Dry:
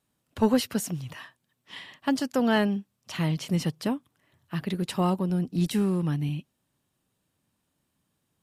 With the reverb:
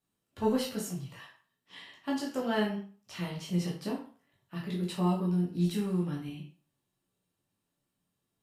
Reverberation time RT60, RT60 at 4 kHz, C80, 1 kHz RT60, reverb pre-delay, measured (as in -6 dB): 0.40 s, 0.35 s, 11.0 dB, 0.45 s, 10 ms